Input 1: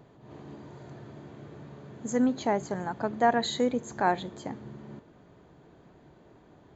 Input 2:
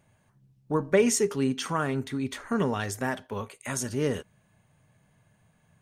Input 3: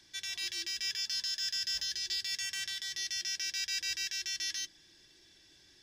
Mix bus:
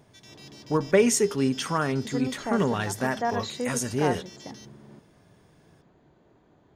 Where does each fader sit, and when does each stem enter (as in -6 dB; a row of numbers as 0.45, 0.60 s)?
-4.5, +2.0, -13.0 dB; 0.00, 0.00, 0.00 s